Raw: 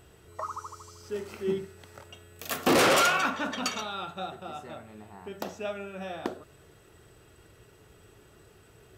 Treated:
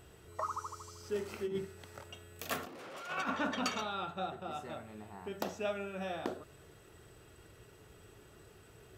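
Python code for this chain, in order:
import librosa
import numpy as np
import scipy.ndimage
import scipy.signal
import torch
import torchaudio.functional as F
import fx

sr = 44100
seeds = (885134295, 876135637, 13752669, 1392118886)

y = fx.high_shelf(x, sr, hz=3400.0, db=-7.0, at=(2.45, 4.51))
y = fx.over_compress(y, sr, threshold_db=-30.0, ratio=-0.5)
y = y * librosa.db_to_amplitude(-5.0)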